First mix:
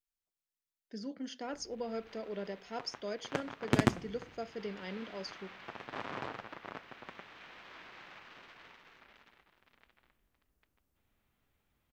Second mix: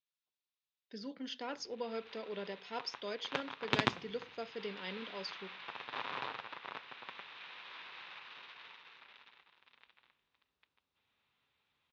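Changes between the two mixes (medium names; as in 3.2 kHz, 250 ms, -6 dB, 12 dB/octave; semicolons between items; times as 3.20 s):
background: add peaking EQ 210 Hz -5.5 dB 2.3 oct; master: add cabinet simulation 150–5500 Hz, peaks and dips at 210 Hz -4 dB, 320 Hz -5 dB, 650 Hz -5 dB, 990 Hz +4 dB, 2.6 kHz +5 dB, 3.7 kHz +9 dB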